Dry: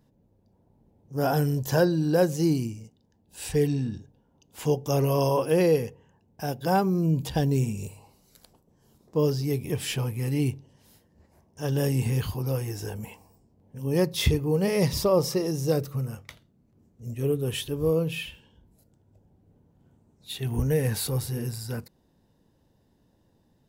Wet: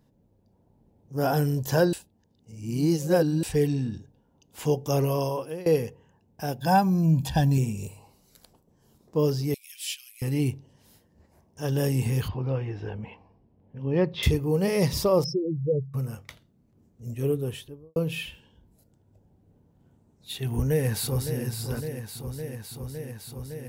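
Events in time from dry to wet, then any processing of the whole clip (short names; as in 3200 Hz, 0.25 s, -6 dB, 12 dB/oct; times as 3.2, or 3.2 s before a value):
1.93–3.43 reverse
4.98–5.66 fade out, to -22 dB
6.59–7.58 comb 1.2 ms, depth 73%
9.54–10.22 inverse Chebyshev high-pass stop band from 780 Hz, stop band 60 dB
12.28–14.23 LPF 3300 Hz 24 dB/oct
15.24–15.94 spectral contrast raised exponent 3.5
17.26–17.96 studio fade out
20.47–21.43 echo throw 0.56 s, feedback 85%, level -9 dB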